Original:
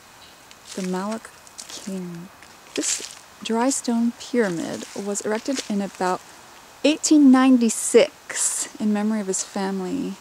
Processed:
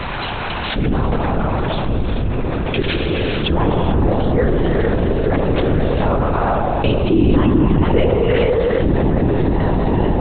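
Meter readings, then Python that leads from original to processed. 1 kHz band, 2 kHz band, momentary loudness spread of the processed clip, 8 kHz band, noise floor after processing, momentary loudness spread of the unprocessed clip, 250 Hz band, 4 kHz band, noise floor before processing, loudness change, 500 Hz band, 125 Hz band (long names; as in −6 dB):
+7.5 dB, +6.0 dB, 6 LU, below −40 dB, −23 dBFS, 18 LU, +2.5 dB, +3.5 dB, −48 dBFS, +4.0 dB, +7.0 dB, +18.5 dB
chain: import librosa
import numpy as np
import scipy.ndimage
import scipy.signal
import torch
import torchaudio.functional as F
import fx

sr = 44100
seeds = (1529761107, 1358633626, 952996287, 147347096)

p1 = fx.low_shelf(x, sr, hz=180.0, db=10.0)
p2 = p1 + fx.echo_wet_bandpass(p1, sr, ms=83, feedback_pct=85, hz=580.0, wet_db=-5.5, dry=0)
p3 = fx.rev_gated(p2, sr, seeds[0], gate_ms=480, shape='rising', drr_db=1.0)
p4 = fx.lpc_vocoder(p3, sr, seeds[1], excitation='whisper', order=10)
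p5 = fx.env_flatten(p4, sr, amount_pct=70)
y = F.gain(torch.from_numpy(p5), -7.0).numpy()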